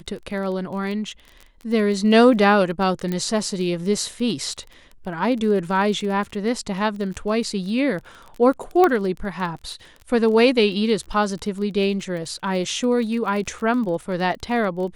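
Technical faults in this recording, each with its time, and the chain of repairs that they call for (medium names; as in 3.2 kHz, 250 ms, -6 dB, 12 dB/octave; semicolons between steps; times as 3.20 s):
crackle 21 per s -30 dBFS
3.12 s: pop -13 dBFS
8.84 s: pop -7 dBFS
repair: de-click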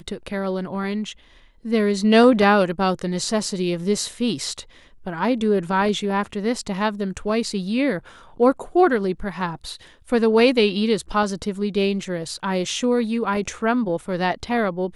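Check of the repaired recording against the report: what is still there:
nothing left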